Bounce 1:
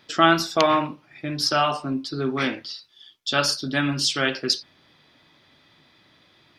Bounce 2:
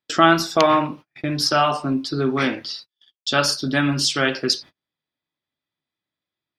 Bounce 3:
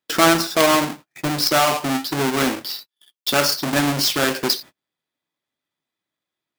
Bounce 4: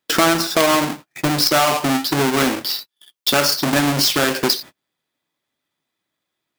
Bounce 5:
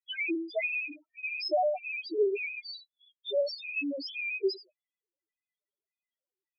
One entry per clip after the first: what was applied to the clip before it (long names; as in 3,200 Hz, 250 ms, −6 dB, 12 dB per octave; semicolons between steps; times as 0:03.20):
in parallel at −1.5 dB: downward compressor 6 to 1, threshold −31 dBFS, peak gain reduction 18.5 dB; on the sum: dynamic equaliser 3,400 Hz, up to −3 dB, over −36 dBFS, Q 0.88; noise gate −39 dBFS, range −38 dB; level +2 dB
each half-wave held at its own peak; low-shelf EQ 150 Hz −11 dB; in parallel at −2.5 dB: brickwall limiter −11.5 dBFS, peak gain reduction 11 dB; on the sum: level −5.5 dB
downward compressor 2.5 to 1, threshold −21 dBFS, peak gain reduction 7.5 dB; level +6 dB
loose part that buzzes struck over −34 dBFS, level −11 dBFS; auto-filter high-pass square 1.7 Hz 420–2,200 Hz; spectral peaks only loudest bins 1; level −5 dB